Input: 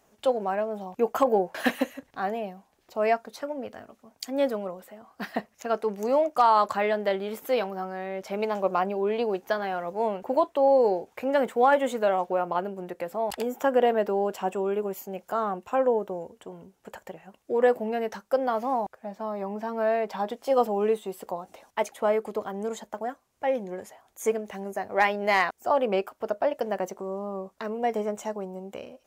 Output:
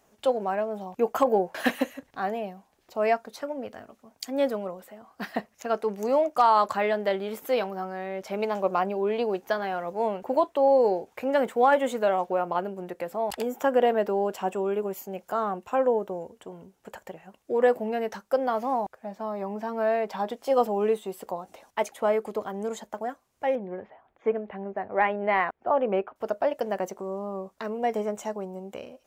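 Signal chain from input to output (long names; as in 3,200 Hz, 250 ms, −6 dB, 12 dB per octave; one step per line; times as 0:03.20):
0:23.55–0:26.16: Bessel low-pass filter 1,900 Hz, order 6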